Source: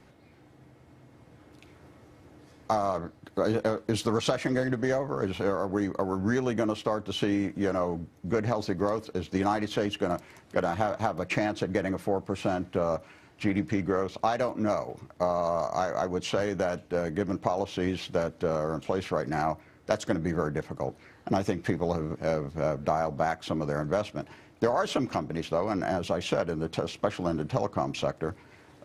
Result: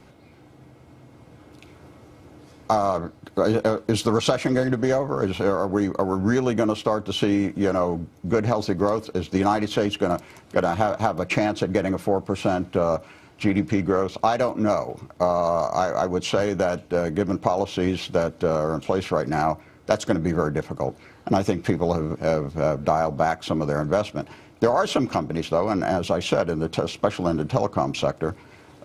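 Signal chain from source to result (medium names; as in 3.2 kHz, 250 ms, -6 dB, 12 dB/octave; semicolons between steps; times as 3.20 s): band-stop 1.8 kHz, Q 7.9; trim +6 dB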